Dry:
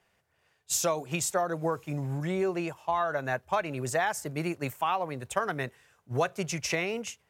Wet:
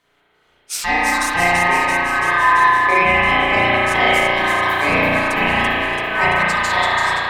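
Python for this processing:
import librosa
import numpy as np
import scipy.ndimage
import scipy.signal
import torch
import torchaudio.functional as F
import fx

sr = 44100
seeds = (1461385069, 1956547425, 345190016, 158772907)

y = fx.echo_alternate(x, sr, ms=168, hz=1400.0, feedback_pct=83, wet_db=-3.0)
y = y * np.sin(2.0 * np.pi * 1400.0 * np.arange(len(y)) / sr)
y = fx.rev_spring(y, sr, rt60_s=1.6, pass_ms=(34,), chirp_ms=50, drr_db=-8.0)
y = y * 10.0 ** (6.5 / 20.0)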